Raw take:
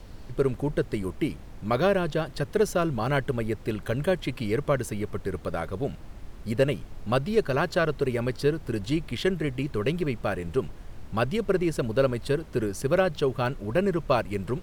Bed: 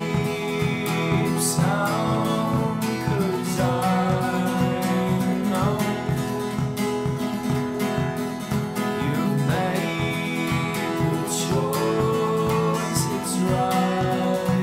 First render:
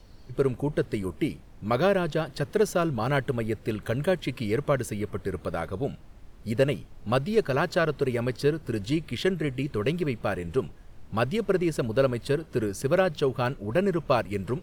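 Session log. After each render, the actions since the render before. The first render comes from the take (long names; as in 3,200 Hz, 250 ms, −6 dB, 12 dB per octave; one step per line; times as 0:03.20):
noise reduction from a noise print 7 dB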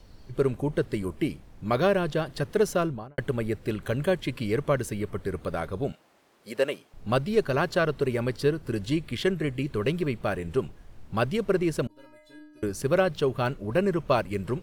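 0:02.76–0:03.18: fade out and dull
0:05.92–0:06.94: high-pass filter 410 Hz
0:11.87–0:12.63: stiff-string resonator 300 Hz, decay 0.81 s, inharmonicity 0.008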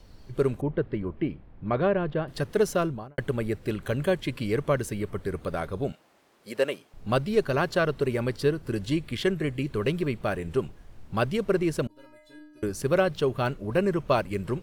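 0:00.61–0:02.28: high-frequency loss of the air 440 metres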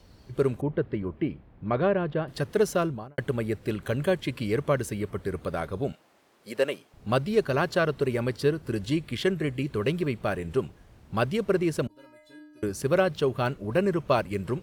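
high-pass filter 47 Hz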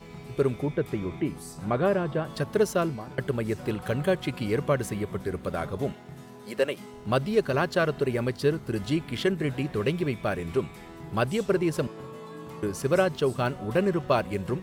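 mix in bed −20 dB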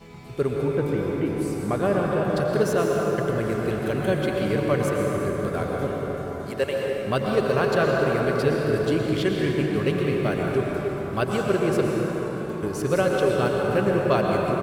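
single-tap delay 87 ms −18 dB
dense smooth reverb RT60 4.9 s, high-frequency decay 0.45×, pre-delay 100 ms, DRR −1.5 dB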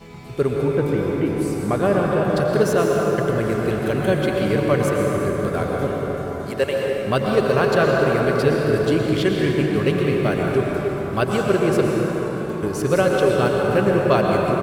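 level +4 dB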